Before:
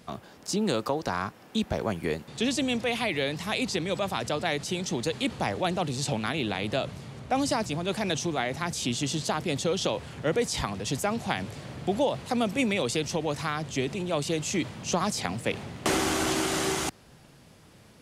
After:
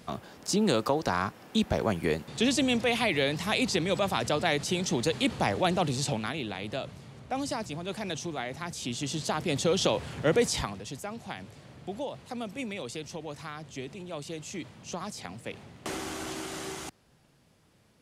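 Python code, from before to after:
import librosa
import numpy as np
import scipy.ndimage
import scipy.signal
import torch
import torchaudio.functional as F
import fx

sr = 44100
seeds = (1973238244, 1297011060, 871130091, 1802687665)

y = fx.gain(x, sr, db=fx.line((5.9, 1.5), (6.47, -6.0), (8.8, -6.0), (9.77, 2.0), (10.48, 2.0), (10.91, -10.0)))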